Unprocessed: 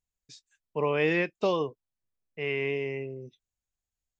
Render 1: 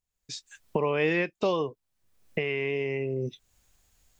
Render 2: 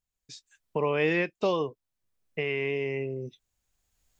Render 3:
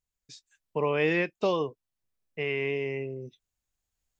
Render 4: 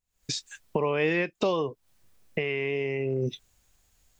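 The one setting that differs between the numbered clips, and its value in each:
camcorder AGC, rising by: 35, 13, 5, 89 dB per second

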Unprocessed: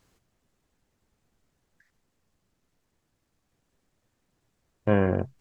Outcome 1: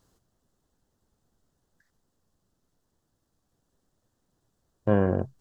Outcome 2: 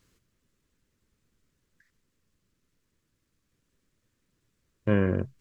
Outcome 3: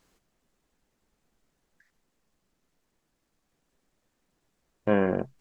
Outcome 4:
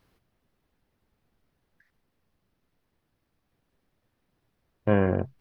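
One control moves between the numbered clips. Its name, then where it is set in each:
parametric band, centre frequency: 2,300, 760, 96, 7,200 Hertz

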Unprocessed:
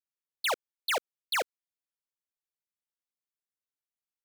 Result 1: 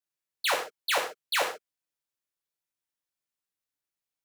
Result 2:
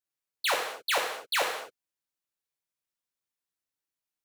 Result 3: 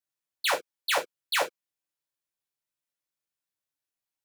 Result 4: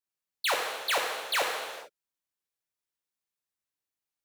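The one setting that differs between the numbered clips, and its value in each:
reverb whose tail is shaped and stops, gate: 170, 290, 80, 480 milliseconds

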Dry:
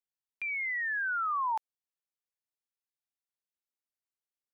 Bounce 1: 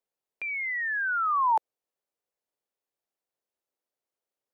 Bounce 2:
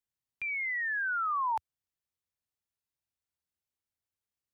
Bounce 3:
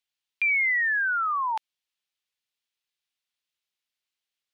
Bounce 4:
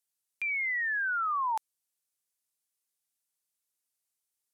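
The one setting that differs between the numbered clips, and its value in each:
parametric band, centre frequency: 510, 82, 3,200, 10,000 Hertz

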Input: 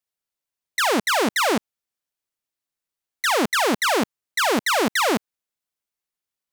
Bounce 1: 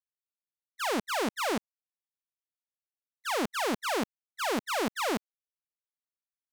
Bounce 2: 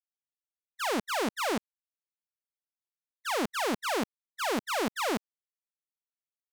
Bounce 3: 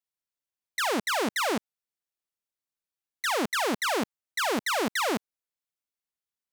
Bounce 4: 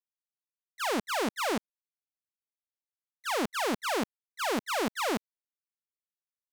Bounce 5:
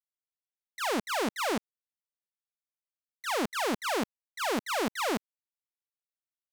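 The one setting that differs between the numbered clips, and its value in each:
noise gate, range: −47, −59, −7, −34, −20 decibels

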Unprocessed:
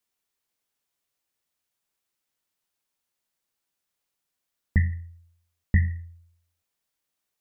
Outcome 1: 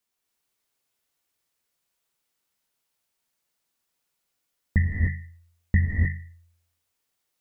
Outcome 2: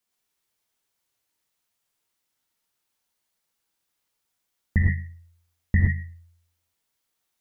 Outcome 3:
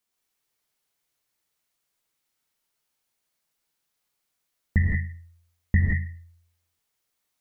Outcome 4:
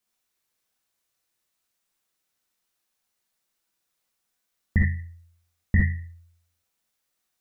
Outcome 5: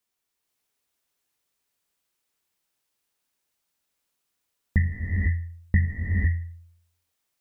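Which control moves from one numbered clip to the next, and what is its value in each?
reverb whose tail is shaped and stops, gate: 330, 140, 200, 90, 530 milliseconds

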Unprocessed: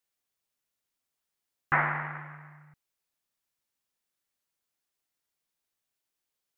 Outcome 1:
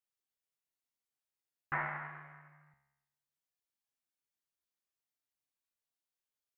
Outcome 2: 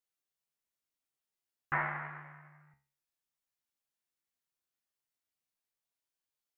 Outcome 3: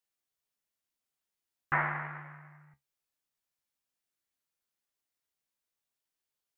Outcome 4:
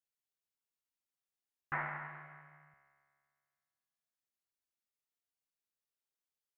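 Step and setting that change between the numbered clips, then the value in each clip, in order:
tuned comb filter, decay: 0.94, 0.38, 0.15, 2 seconds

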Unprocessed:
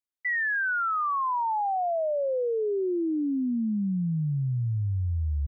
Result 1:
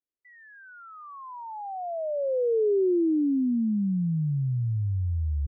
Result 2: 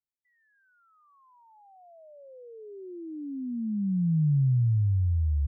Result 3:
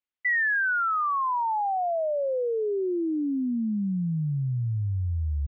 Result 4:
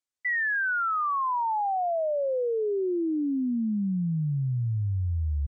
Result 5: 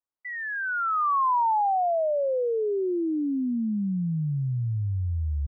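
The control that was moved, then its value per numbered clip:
low-pass with resonance, frequency: 430, 150, 2,800, 7,800, 1,100 Hertz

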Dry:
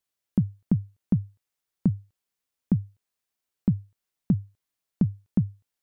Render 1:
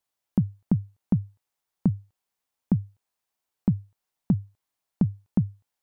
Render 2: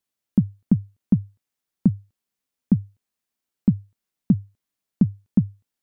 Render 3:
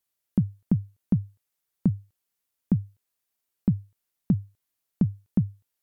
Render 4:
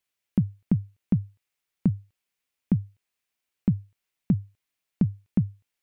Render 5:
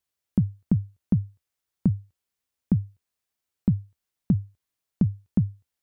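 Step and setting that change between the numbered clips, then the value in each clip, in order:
parametric band, centre frequency: 850, 230, 14,000, 2,400, 74 Hertz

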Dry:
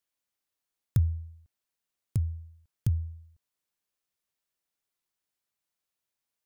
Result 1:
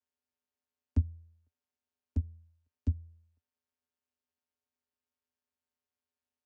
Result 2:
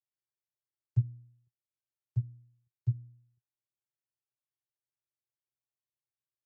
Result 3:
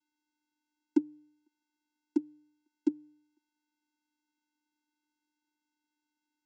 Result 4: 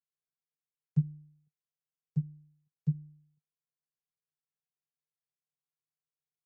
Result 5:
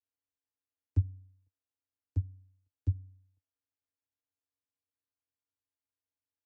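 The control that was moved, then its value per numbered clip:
channel vocoder, frequency: 83, 120, 300, 150, 94 Hertz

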